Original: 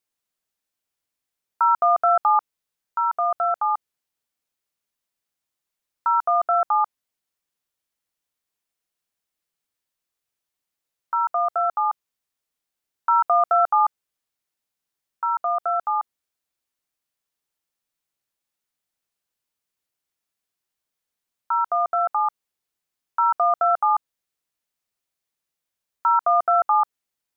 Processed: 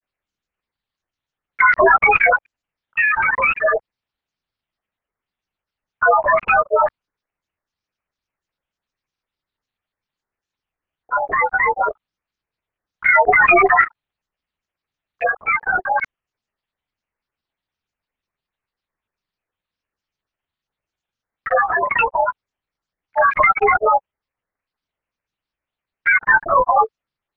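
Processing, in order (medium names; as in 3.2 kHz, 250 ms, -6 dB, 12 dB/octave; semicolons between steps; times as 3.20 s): granulator 100 ms, grains 20 per s, spray 12 ms, pitch spread up and down by 0 st; LPC vocoder at 8 kHz whisper; granulator 100 ms, grains 20 per s, spray 33 ms, pitch spread up and down by 12 st; trim +7.5 dB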